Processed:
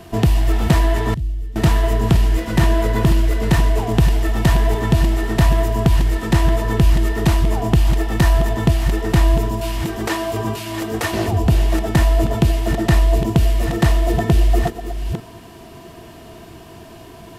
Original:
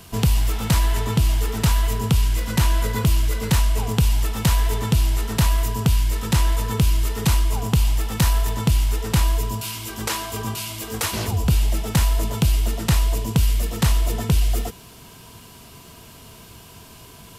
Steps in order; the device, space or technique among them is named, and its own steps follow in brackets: reverse delay 0.475 s, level -9 dB; inside a helmet (high shelf 4000 Hz -10 dB; small resonant body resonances 340/670/1800 Hz, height 12 dB, ringing for 45 ms); 1.14–1.56 passive tone stack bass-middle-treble 10-0-1; gain +3 dB

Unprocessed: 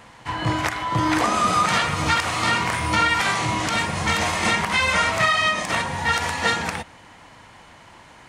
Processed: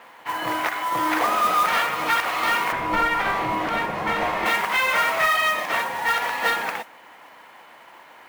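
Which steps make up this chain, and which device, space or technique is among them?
carbon microphone (BPF 420–3000 Hz; soft clip -13 dBFS, distortion -21 dB; modulation noise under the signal 17 dB); 2.72–4.46 tilt -3 dB/oct; gain +1.5 dB

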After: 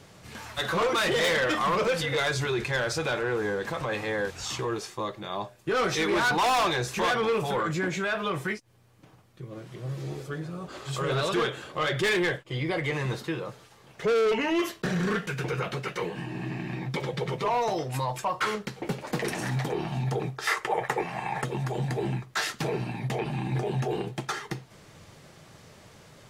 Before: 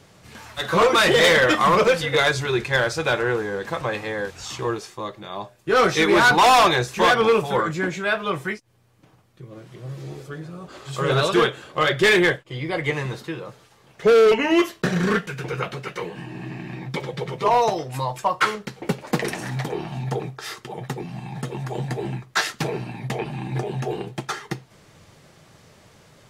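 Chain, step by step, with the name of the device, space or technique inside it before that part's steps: soft clipper into limiter (soft clip -14 dBFS, distortion -16 dB; limiter -21 dBFS, peak gain reduction 6.5 dB); 20.47–21.44 graphic EQ 125/250/500/1000/2000/4000/8000 Hz -8/-7/+8/+8/+11/-3/+4 dB

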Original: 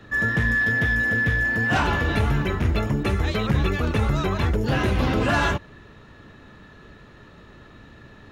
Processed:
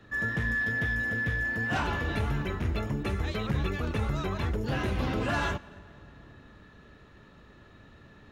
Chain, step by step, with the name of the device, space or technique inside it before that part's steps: compressed reverb return (on a send at -6.5 dB: reverb RT60 1.7 s, pre-delay 87 ms + compressor 6:1, threshold -33 dBFS, peak gain reduction 18.5 dB); on the sum: gain -8 dB

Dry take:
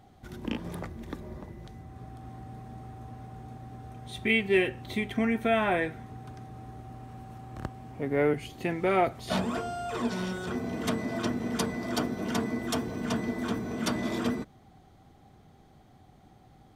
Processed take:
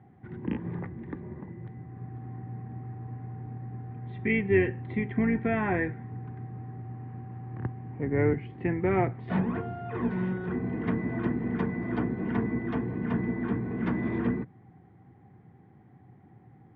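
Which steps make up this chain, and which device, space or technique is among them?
sub-octave bass pedal (octaver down 2 oct, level -2 dB; speaker cabinet 88–2000 Hz, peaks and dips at 120 Hz +7 dB, 180 Hz +4 dB, 340 Hz +3 dB, 620 Hz -10 dB, 1300 Hz -7 dB, 1900 Hz +4 dB)

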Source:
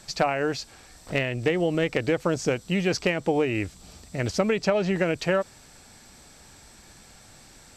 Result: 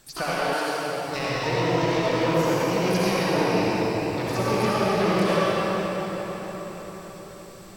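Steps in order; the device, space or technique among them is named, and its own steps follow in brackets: shimmer-style reverb (harmoniser +12 st -4 dB; reverb RT60 5.4 s, pre-delay 57 ms, DRR -8.5 dB); 0.53–1.14 HPF 320 Hz -> 96 Hz 12 dB/oct; gain -8 dB

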